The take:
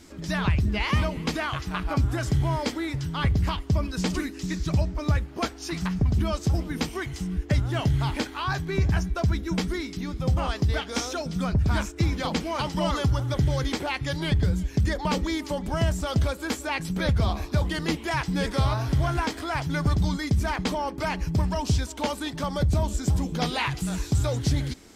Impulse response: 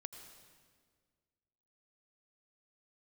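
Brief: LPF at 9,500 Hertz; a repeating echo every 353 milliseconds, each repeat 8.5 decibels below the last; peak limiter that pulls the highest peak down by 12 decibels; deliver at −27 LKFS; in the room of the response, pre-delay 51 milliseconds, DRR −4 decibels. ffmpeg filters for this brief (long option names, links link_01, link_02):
-filter_complex "[0:a]lowpass=9500,alimiter=level_in=1dB:limit=-24dB:level=0:latency=1,volume=-1dB,aecho=1:1:353|706|1059|1412:0.376|0.143|0.0543|0.0206,asplit=2[link_01][link_02];[1:a]atrim=start_sample=2205,adelay=51[link_03];[link_02][link_03]afir=irnorm=-1:irlink=0,volume=8dB[link_04];[link_01][link_04]amix=inputs=2:normalize=0,volume=0.5dB"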